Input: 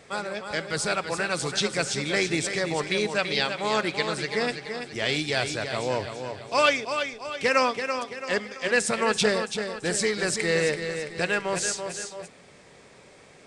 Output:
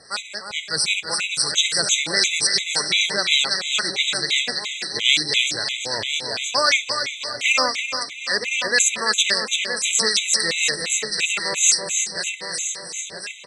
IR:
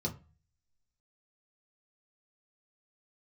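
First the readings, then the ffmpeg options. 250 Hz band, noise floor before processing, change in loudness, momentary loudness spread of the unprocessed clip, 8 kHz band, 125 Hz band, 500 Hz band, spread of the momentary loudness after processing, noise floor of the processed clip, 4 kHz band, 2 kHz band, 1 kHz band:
-6.0 dB, -52 dBFS, +6.5 dB, 9 LU, +12.5 dB, -6.5 dB, -4.5 dB, 8 LU, -36 dBFS, +12.0 dB, +5.5 dB, -0.5 dB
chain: -filter_complex "[0:a]areverse,acompressor=mode=upward:threshold=-45dB:ratio=2.5,areverse,aecho=1:1:968|1936|2904|3872|4840|5808:0.447|0.214|0.103|0.0494|0.0237|0.0114,acontrast=33,equalizer=f=4.2k:t=o:w=2.9:g=12,acrossover=split=1100[a][b];[a]aeval=exprs='val(0)*(1-0.5/2+0.5/2*cos(2*PI*3.8*n/s))':c=same[c];[b]aeval=exprs='val(0)*(1-0.5/2-0.5/2*cos(2*PI*3.8*n/s))':c=same[d];[c][d]amix=inputs=2:normalize=0,highshelf=f=2.9k:g=10.5,afftfilt=real='re*gt(sin(2*PI*2.9*pts/sr)*(1-2*mod(floor(b*sr/1024/2000),2)),0)':imag='im*gt(sin(2*PI*2.9*pts/sr)*(1-2*mod(floor(b*sr/1024/2000),2)),0)':win_size=1024:overlap=0.75,volume=-7dB"

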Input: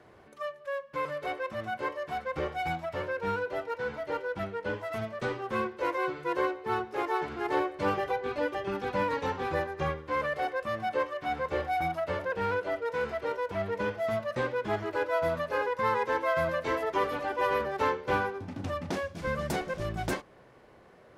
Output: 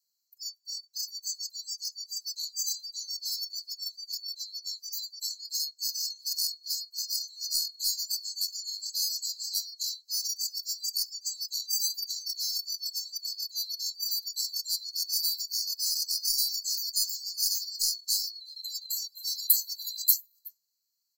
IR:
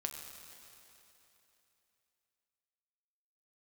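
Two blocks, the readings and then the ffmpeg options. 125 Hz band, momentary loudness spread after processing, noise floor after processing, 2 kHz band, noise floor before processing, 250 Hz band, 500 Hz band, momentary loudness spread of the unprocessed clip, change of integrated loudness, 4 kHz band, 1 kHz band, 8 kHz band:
under -40 dB, 9 LU, -76 dBFS, under -40 dB, -56 dBFS, under -40 dB, under -40 dB, 6 LU, +2.0 dB, +17.5 dB, under -40 dB, n/a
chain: -af "afftfilt=real='real(if(lt(b,736),b+184*(1-2*mod(floor(b/184),2)),b),0)':imag='imag(if(lt(b,736),b+184*(1-2*mod(floor(b/184),2)),b),0)':win_size=2048:overlap=0.75,flanger=delay=6.7:depth=3.5:regen=-39:speed=0.88:shape=sinusoidal,aemphasis=mode=production:type=50kf,aeval=exprs='0.224*(cos(1*acos(clip(val(0)/0.224,-1,1)))-cos(1*PI/2))+0.0251*(cos(2*acos(clip(val(0)/0.224,-1,1)))-cos(2*PI/2))+0.00355*(cos(5*acos(clip(val(0)/0.224,-1,1)))-cos(5*PI/2))+0.00891*(cos(7*acos(clip(val(0)/0.224,-1,1)))-cos(7*PI/2))+0.00141*(cos(8*acos(clip(val(0)/0.224,-1,1)))-cos(8*PI/2))':c=same,aecho=1:1:369:0.15,aexciter=amount=15.4:drive=6.1:freq=7.7k,highshelf=f=8.3k:g=-10,afftdn=nr=24:nf=-32"

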